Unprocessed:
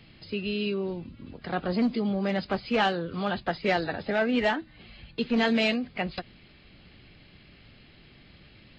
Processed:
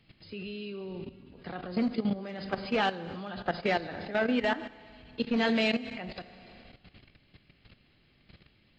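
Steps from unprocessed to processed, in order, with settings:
four-comb reverb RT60 1.9 s, combs from 32 ms, DRR 10 dB
output level in coarse steps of 13 dB

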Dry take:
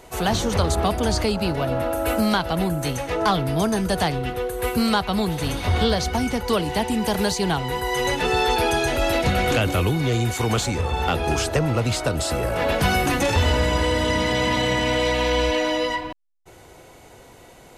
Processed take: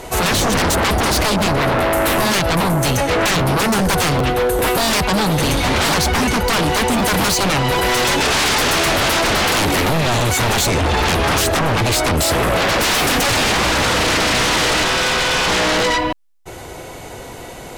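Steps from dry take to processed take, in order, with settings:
0:14.83–0:15.48: ring modulation 1,000 Hz
sine wavefolder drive 15 dB, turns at −8 dBFS
regular buffer underruns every 0.40 s, samples 512, repeat, from 0:00.58
level −5 dB

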